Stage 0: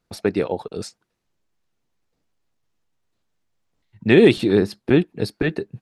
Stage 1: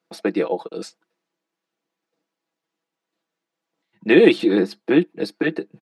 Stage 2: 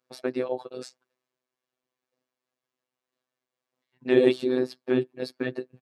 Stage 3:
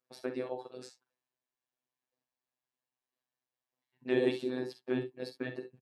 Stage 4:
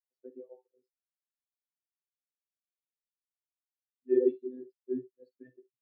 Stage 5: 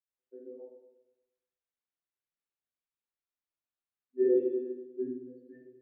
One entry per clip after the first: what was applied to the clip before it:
high-pass filter 220 Hz 24 dB per octave; high-shelf EQ 6,800 Hz −9.5 dB; comb filter 6.1 ms, depth 64%
dynamic equaliser 2,200 Hz, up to −7 dB, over −34 dBFS, Q 0.94; phases set to zero 127 Hz; level −3.5 dB
ambience of single reflections 46 ms −10 dB, 64 ms −12 dB; level −8 dB
every bin expanded away from the loudest bin 2.5 to 1
convolution reverb RT60 1.0 s, pre-delay 78 ms; level +7 dB

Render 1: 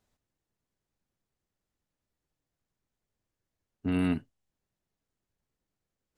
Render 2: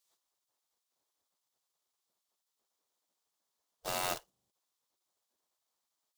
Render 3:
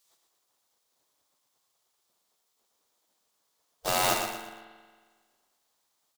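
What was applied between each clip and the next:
floating-point word with a short mantissa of 2 bits; gate on every frequency bin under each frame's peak −20 dB weak; flat-topped bell 2,000 Hz −8 dB 1.2 octaves; level +7.5 dB
on a send: repeating echo 117 ms, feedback 37%, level −6.5 dB; on the sum: spring reverb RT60 1.6 s, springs 45 ms, chirp 80 ms, DRR 8.5 dB; level +8.5 dB

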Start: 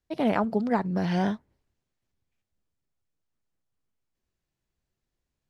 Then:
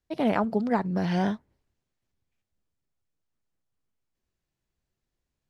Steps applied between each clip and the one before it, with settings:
no processing that can be heard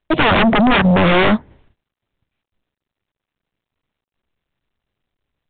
sine wavefolder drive 18 dB, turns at −11 dBFS
noise gate −52 dBFS, range −26 dB
level +2 dB
mu-law 64 kbit/s 8,000 Hz

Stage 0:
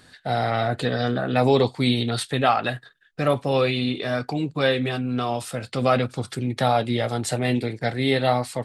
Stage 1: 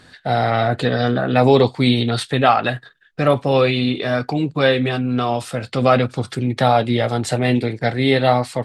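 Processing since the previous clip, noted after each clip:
high-shelf EQ 8,000 Hz −10.5 dB
level +5.5 dB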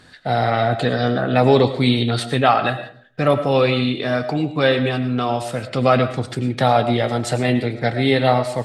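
convolution reverb RT60 0.50 s, pre-delay 65 ms, DRR 10.5 dB
level −1 dB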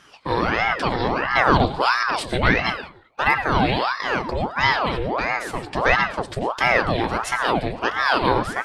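ring modulator whose carrier an LFO sweeps 850 Hz, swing 75%, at 1.5 Hz

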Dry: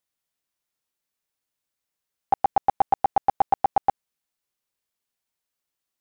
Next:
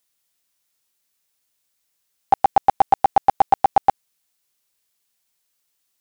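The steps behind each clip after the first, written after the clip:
high-shelf EQ 2,500 Hz +8.5 dB
level +4.5 dB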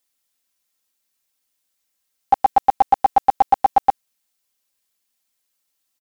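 comb filter 3.8 ms, depth 61%
level −3 dB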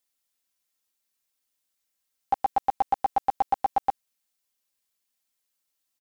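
brickwall limiter −8.5 dBFS, peak gain reduction 4 dB
level −5.5 dB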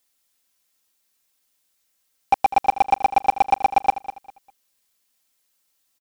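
hard clipping −18.5 dBFS, distortion −14 dB
repeating echo 200 ms, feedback 27%, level −14 dB
level +9 dB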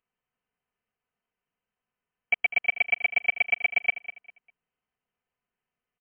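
voice inversion scrambler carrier 3,100 Hz
level −7 dB

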